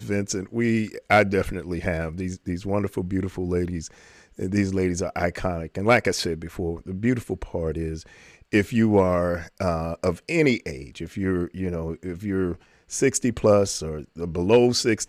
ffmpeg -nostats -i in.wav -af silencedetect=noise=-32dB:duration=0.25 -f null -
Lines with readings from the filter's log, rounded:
silence_start: 3.87
silence_end: 4.39 | silence_duration: 0.53
silence_start: 8.01
silence_end: 8.53 | silence_duration: 0.52
silence_start: 12.55
silence_end: 12.92 | silence_duration: 0.37